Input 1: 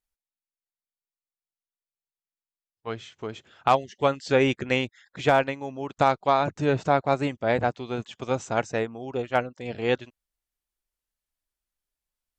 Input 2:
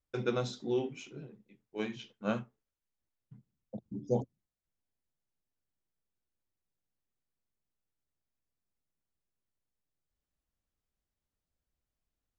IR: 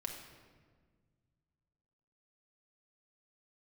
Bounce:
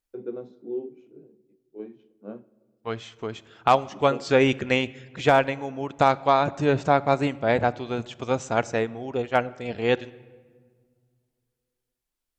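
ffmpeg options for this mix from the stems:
-filter_complex "[0:a]volume=0.5dB,asplit=2[link_01][link_02];[link_02]volume=-12.5dB[link_03];[1:a]bandpass=frequency=360:width_type=q:width=2.4:csg=0,volume=0.5dB,asplit=2[link_04][link_05];[link_05]volume=-13dB[link_06];[2:a]atrim=start_sample=2205[link_07];[link_03][link_06]amix=inputs=2:normalize=0[link_08];[link_08][link_07]afir=irnorm=-1:irlink=0[link_09];[link_01][link_04][link_09]amix=inputs=3:normalize=0"

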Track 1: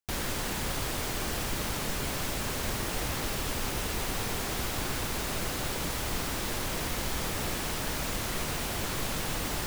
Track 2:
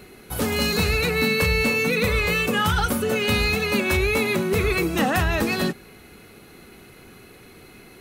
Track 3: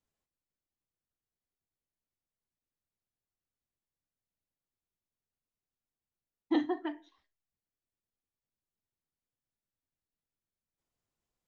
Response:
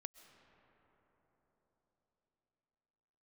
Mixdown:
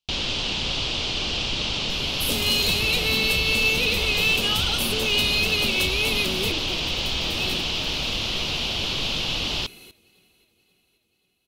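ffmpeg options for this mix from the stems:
-filter_complex "[0:a]lowpass=frequency=4900:width=0.5412,lowpass=frequency=4900:width=1.3066,volume=2.5dB[link_01];[1:a]acompressor=threshold=-22dB:ratio=6,adelay=1900,volume=-4dB,asplit=2[link_02][link_03];[link_03]volume=-17.5dB[link_04];[2:a]volume=-8.5dB,asplit=2[link_05][link_06];[link_06]apad=whole_len=437016[link_07];[link_02][link_07]sidechaincompress=threshold=-50dB:ratio=8:attack=16:release=1100[link_08];[link_04]aecho=0:1:532|1064|1596|2128|2660|3192|3724|4256:1|0.53|0.281|0.149|0.0789|0.0418|0.0222|0.0117[link_09];[link_01][link_08][link_05][link_09]amix=inputs=4:normalize=0,highshelf=frequency=2300:width_type=q:width=3:gain=8"

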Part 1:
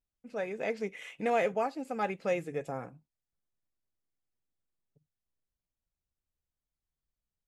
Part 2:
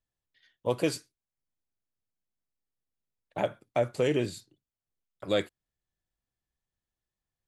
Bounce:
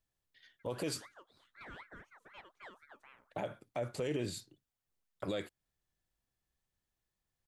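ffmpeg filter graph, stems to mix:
ffmpeg -i stem1.wav -i stem2.wav -filter_complex "[0:a]aeval=exprs='val(0)*sin(2*PI*1300*n/s+1300*0.45/4*sin(2*PI*4*n/s))':channel_layout=same,adelay=350,volume=-20dB[link_01];[1:a]acompressor=threshold=-36dB:ratio=1.5,volume=2dB[link_02];[link_01][link_02]amix=inputs=2:normalize=0,alimiter=level_in=3dB:limit=-24dB:level=0:latency=1:release=62,volume=-3dB" out.wav

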